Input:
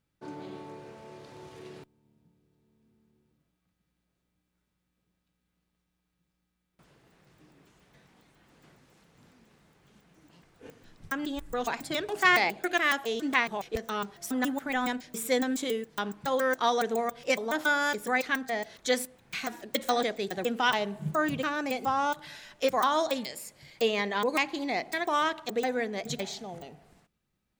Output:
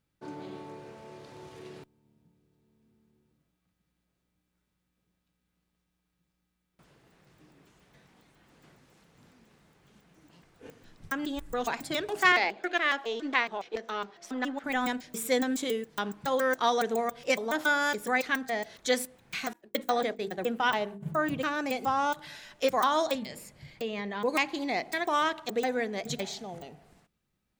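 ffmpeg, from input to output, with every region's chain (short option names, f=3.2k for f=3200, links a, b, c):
-filter_complex "[0:a]asettb=1/sr,asplit=3[a][b][c];[a]atrim=end=12.324[d];[b]atrim=start=12.32:end=14.64,asetpts=PTS-STARTPTS,afade=t=in:d=0.004:c=qsin,afade=t=out:st=2.316:d=0.004:c=qsin,aeval=exprs='if(lt(val(0),0),0.708*val(0),val(0))':c=same,acrossover=split=220 5900:gain=0.1 1 0.0794[e][f][g];[e][f][g]amix=inputs=3:normalize=0[h];[c]atrim=start=14.636[i];[d][h]acrossfade=d=0.004:c1=hsin:c2=qsin[j];[j][i]acrossfade=d=0.004:c1=qsin:c2=hsin,asettb=1/sr,asplit=3[k][l][m];[k]atrim=end=19.534[n];[l]atrim=start=19.53:end=21.41,asetpts=PTS-STARTPTS,afade=t=in:d=0.004:c=qsin,afade=t=out:st=1.876:d=0.004:c=qsin,agate=range=-33dB:threshold=-35dB:ratio=3:release=100:detection=peak,equalizer=f=5.8k:t=o:w=2.1:g=-6.5,bandreject=f=50:t=h:w=6,bandreject=f=100:t=h:w=6,bandreject=f=150:t=h:w=6,bandreject=f=200:t=h:w=6,bandreject=f=250:t=h:w=6,bandreject=f=300:t=h:w=6,bandreject=f=350:t=h:w=6,bandreject=f=400:t=h:w=6,bandreject=f=450:t=h:w=6[o];[m]atrim=start=21.406[p];[n][o]acrossfade=d=0.004:c1=hsin:c2=qsin[q];[q][p]acrossfade=d=0.004:c1=qsin:c2=hsin,asettb=1/sr,asplit=3[r][s][t];[r]atrim=end=23.154[u];[s]atrim=start=23.15:end=24.24,asetpts=PTS-STARTPTS,afade=t=in:d=0.004:c=qsin,afade=t=out:st=1.086:d=0.004:c=qsin,bass=f=250:g=9,treble=f=4k:g=-6,bandreject=f=60:t=h:w=6,bandreject=f=120:t=h:w=6,bandreject=f=180:t=h:w=6,bandreject=f=240:t=h:w=6,bandreject=f=300:t=h:w=6,bandreject=f=360:t=h:w=6,bandreject=f=420:t=h:w=6,bandreject=f=480:t=h:w=6,bandreject=f=540:t=h:w=6,acompressor=threshold=-34dB:ratio=2.5:attack=3.2:release=140:knee=1:detection=peak[v];[t]atrim=start=24.236[w];[u][v]acrossfade=d=0.004:c1=hsin:c2=qsin[x];[x][w]acrossfade=d=0.004:c1=qsin:c2=hsin"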